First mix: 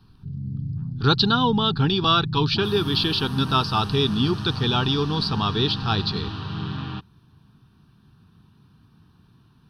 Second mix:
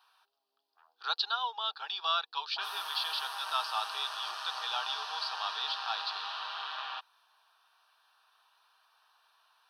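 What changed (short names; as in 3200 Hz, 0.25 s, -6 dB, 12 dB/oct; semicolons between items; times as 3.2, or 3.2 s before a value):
speech -10.5 dB; master: add steep high-pass 600 Hz 48 dB/oct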